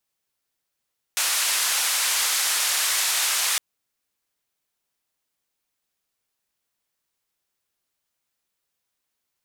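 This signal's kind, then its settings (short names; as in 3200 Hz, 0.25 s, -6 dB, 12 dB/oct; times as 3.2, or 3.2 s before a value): noise band 1000–11000 Hz, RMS -23 dBFS 2.41 s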